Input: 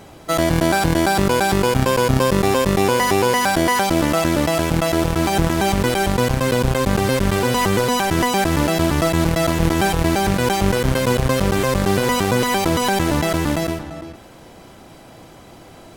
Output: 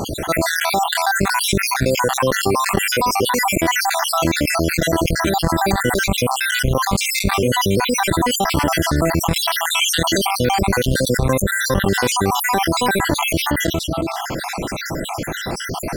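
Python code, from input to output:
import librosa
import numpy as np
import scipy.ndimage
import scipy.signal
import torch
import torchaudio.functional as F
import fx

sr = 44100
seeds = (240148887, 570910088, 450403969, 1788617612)

y = fx.spec_dropout(x, sr, seeds[0], share_pct=63)
y = fx.weighting(y, sr, curve='D', at=(9.71, 10.18))
y = fx.env_flatten(y, sr, amount_pct=70)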